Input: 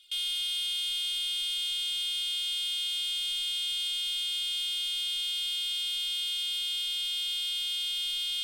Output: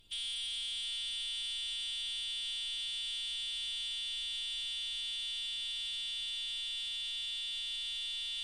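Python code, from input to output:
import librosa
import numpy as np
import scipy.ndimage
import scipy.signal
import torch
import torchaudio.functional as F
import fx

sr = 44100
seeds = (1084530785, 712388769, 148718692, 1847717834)

y = x + 10.0 ** (-8.0 / 20.0) * np.pad(x, (int(724 * sr / 1000.0), 0))[:len(x)]
y = fx.dmg_noise_colour(y, sr, seeds[0], colour='brown', level_db=-58.0)
y = fx.pitch_keep_formants(y, sr, semitones=-7.5)
y = y * 10.0 ** (-7.0 / 20.0)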